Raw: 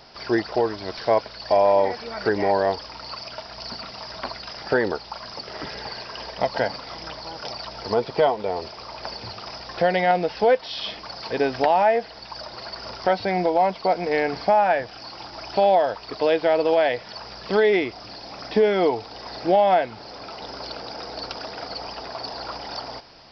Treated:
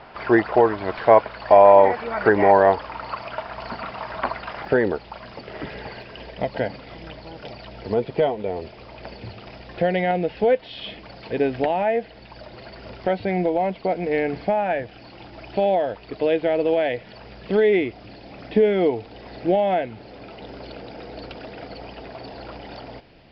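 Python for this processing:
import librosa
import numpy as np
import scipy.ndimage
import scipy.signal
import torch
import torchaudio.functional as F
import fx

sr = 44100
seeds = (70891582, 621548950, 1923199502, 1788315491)

y = scipy.signal.sosfilt(scipy.signal.butter(4, 2900.0, 'lowpass', fs=sr, output='sos'), x)
y = fx.peak_eq(y, sr, hz=1100.0, db=fx.steps((0.0, 3.5), (4.65, -8.5), (6.02, -14.5)), octaves=1.5)
y = y * 10.0 ** (4.5 / 20.0)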